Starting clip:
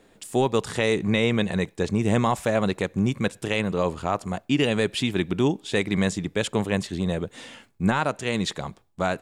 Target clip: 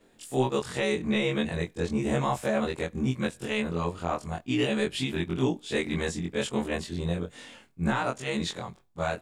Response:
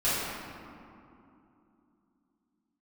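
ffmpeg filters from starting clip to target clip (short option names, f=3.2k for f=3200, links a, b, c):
-af "afftfilt=real='re':imag='-im':win_size=2048:overlap=0.75"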